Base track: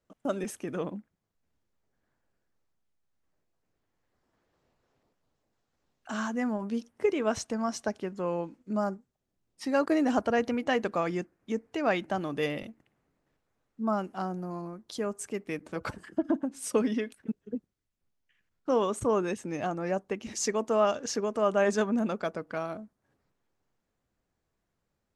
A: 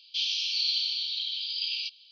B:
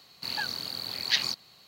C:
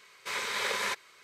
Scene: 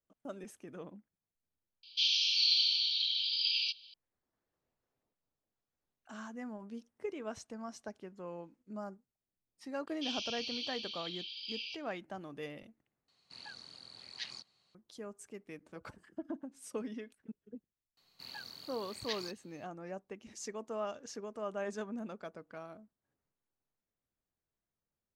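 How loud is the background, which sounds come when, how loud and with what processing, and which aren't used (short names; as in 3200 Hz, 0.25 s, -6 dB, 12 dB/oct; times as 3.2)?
base track -13.5 dB
1.83 add A -0.5 dB
9.87 add A -2.5 dB + bell 4200 Hz -14.5 dB 0.71 oct
13.08 replace with B -17.5 dB + downsampling 22050 Hz
17.97 add B -15 dB
not used: C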